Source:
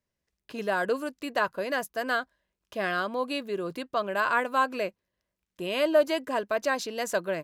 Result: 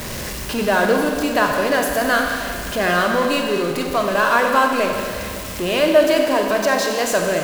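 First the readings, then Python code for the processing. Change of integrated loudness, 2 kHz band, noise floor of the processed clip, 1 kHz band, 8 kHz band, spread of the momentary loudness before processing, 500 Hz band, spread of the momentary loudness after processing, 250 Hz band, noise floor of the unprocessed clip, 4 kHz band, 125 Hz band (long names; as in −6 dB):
+10.5 dB, +10.5 dB, −29 dBFS, +10.0 dB, +16.0 dB, 9 LU, +10.5 dB, 9 LU, +13.0 dB, below −85 dBFS, +12.0 dB, +15.5 dB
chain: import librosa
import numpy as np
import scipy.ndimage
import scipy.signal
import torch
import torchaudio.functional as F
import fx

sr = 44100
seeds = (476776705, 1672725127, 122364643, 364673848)

p1 = x + 0.5 * 10.0 ** (-30.5 / 20.0) * np.sign(x)
p2 = fx.rider(p1, sr, range_db=5, speed_s=2.0)
p3 = p1 + (p2 * 10.0 ** (2.0 / 20.0))
p4 = fx.rev_schroeder(p3, sr, rt60_s=2.2, comb_ms=30, drr_db=2.0)
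y = p4 * 10.0 ** (-1.0 / 20.0)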